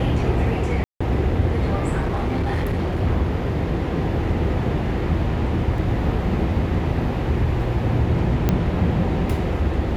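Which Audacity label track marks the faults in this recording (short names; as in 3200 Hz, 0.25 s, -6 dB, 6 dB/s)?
0.840000	1.000000	gap 0.165 s
2.000000	3.010000	clipped -18.5 dBFS
5.780000	5.780000	gap 2.5 ms
8.490000	8.490000	pop -6 dBFS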